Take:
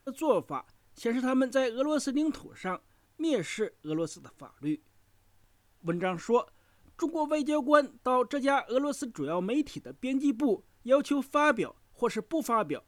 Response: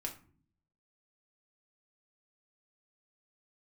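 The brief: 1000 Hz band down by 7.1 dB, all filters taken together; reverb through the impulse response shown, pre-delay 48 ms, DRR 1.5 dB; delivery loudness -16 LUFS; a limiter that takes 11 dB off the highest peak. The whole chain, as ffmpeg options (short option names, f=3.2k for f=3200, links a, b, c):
-filter_complex "[0:a]equalizer=f=1k:t=o:g=-9,alimiter=limit=-22.5dB:level=0:latency=1,asplit=2[a][b];[1:a]atrim=start_sample=2205,adelay=48[c];[b][c]afir=irnorm=-1:irlink=0,volume=-0.5dB[d];[a][d]amix=inputs=2:normalize=0,volume=14.5dB"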